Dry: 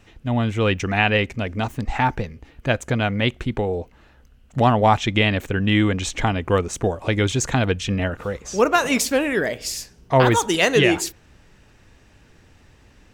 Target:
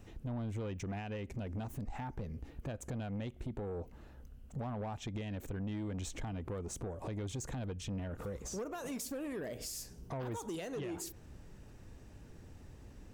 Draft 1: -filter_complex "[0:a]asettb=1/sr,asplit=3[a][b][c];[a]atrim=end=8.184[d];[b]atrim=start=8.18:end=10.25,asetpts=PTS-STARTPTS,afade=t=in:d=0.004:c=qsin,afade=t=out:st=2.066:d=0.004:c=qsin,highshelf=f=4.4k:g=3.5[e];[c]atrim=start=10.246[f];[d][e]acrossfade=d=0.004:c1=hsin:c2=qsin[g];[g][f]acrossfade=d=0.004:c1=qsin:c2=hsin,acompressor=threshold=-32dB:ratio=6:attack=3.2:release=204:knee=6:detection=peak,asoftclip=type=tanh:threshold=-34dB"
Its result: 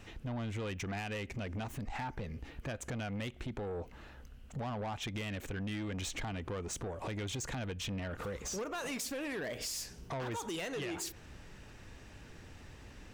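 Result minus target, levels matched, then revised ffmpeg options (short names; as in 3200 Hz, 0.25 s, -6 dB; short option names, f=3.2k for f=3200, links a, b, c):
2000 Hz band +7.0 dB
-filter_complex "[0:a]asettb=1/sr,asplit=3[a][b][c];[a]atrim=end=8.184[d];[b]atrim=start=8.18:end=10.25,asetpts=PTS-STARTPTS,afade=t=in:d=0.004:c=qsin,afade=t=out:st=2.066:d=0.004:c=qsin,highshelf=f=4.4k:g=3.5[e];[c]atrim=start=10.246[f];[d][e]acrossfade=d=0.004:c1=hsin:c2=qsin[g];[g][f]acrossfade=d=0.004:c1=qsin:c2=hsin,acompressor=threshold=-32dB:ratio=6:attack=3.2:release=204:knee=6:detection=peak,equalizer=f=2.5k:w=0.39:g=-11.5,asoftclip=type=tanh:threshold=-34dB"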